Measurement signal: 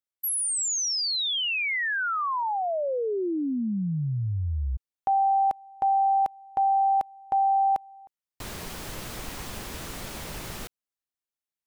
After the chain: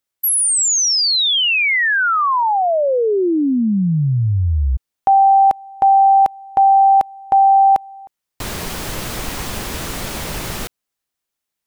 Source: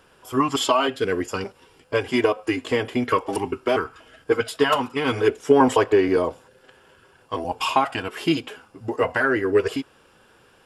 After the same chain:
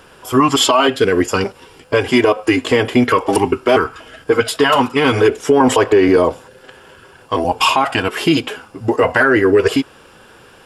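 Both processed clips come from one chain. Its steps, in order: maximiser +13.5 dB; gain -2 dB

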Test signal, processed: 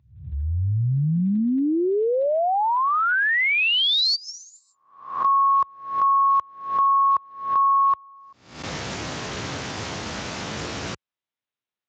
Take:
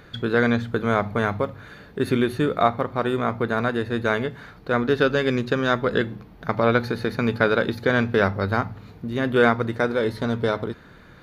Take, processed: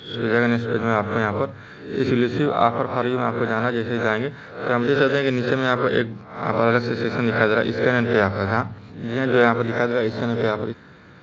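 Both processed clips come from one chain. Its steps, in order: spectral swells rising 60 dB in 0.55 s; Speex 34 kbps 16000 Hz

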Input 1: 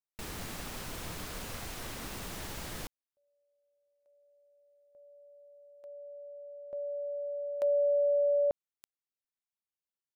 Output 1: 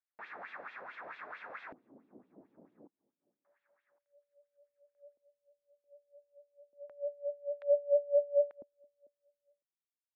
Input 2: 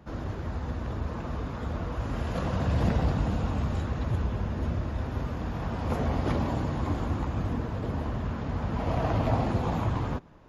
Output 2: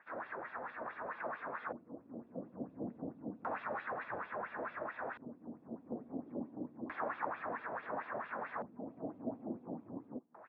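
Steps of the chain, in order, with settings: notch 3000 Hz, Q 7.2; feedback echo 0.556 s, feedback 33%, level -24 dB; wah 4.5 Hz 570–3400 Hz, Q 2.9; HPF 180 Hz 12 dB/oct; LFO low-pass square 0.29 Hz 270–1700 Hz; gain +3 dB

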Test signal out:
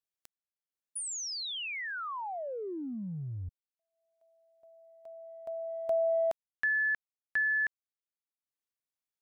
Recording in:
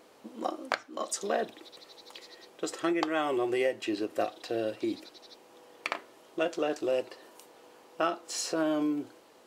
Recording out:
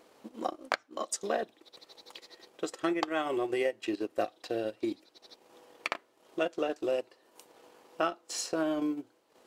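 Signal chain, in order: transient shaper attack +2 dB, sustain -11 dB; gain -2 dB

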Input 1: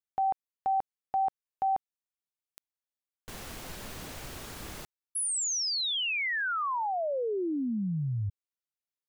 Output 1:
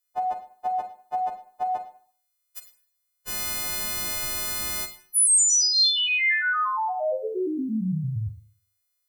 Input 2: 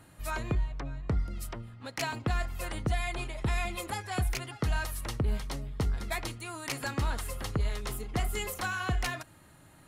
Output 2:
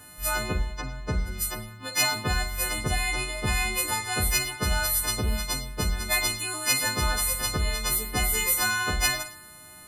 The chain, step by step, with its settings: frequency quantiser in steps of 3 st; Schroeder reverb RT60 0.49 s, combs from 33 ms, DRR 7.5 dB; gain +3.5 dB

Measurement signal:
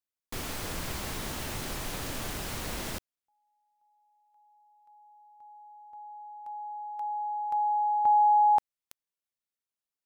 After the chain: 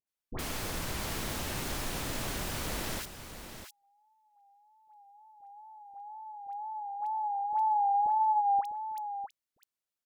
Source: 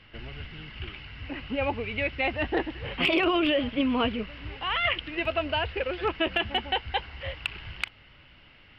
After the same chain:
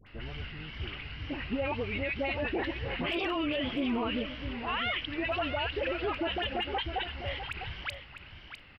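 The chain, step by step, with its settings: wow and flutter 76 cents; dispersion highs, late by 70 ms, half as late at 1200 Hz; limiter -24 dBFS; on a send: echo 0.652 s -10 dB

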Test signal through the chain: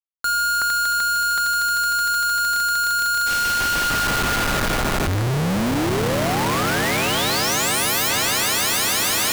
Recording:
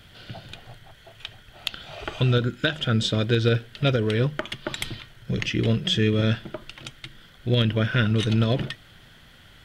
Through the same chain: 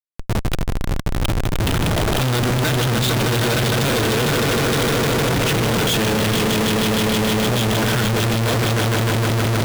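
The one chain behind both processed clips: swelling echo 0.153 s, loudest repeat 5, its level -7 dB; Schmitt trigger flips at -34.5 dBFS; gain +3.5 dB

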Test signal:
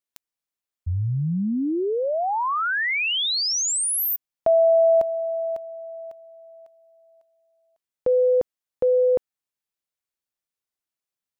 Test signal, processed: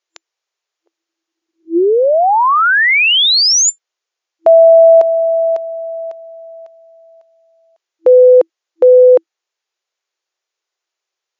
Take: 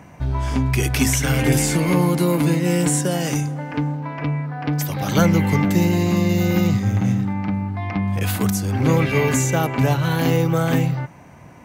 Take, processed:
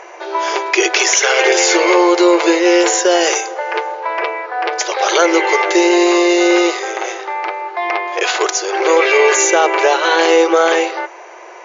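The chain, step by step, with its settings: FFT band-pass 330–7200 Hz; maximiser +14 dB; gain -1 dB

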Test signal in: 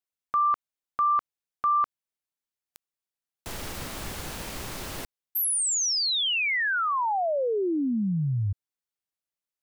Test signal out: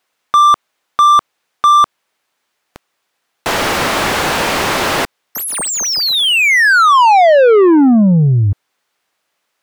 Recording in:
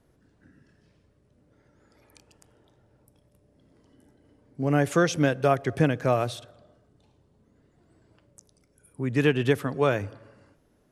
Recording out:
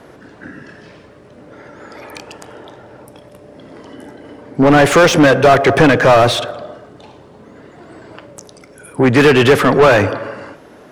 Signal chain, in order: overdrive pedal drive 30 dB, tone 1700 Hz, clips at -9 dBFS; gain +8.5 dB

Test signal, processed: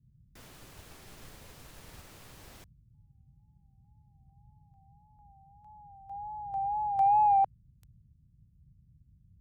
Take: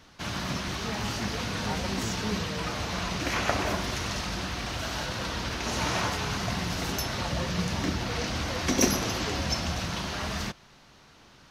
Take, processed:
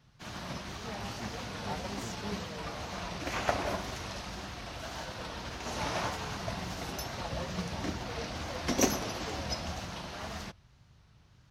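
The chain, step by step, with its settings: dynamic EQ 690 Hz, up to +5 dB, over -42 dBFS, Q 1.2; wow and flutter 71 cents; band noise 33–150 Hz -48 dBFS; in parallel at -11.5 dB: soft clip -15.5 dBFS; on the sum: upward expander 1.5:1, over -37 dBFS; gain -5 dB

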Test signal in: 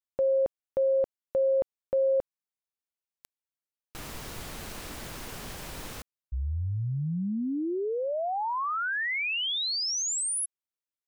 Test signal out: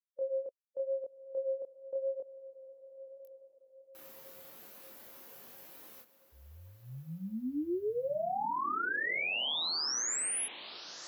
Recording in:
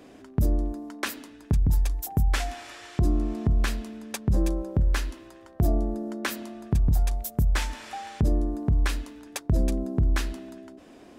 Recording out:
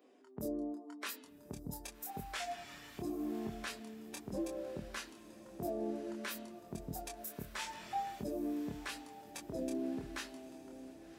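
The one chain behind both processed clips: per-bin expansion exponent 1.5; HPF 310 Hz 12 dB/oct; limiter -30.5 dBFS; chorus 0.87 Hz, depth 5.2 ms; diffused feedback echo 1.161 s, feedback 44%, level -14 dB; gain +2.5 dB

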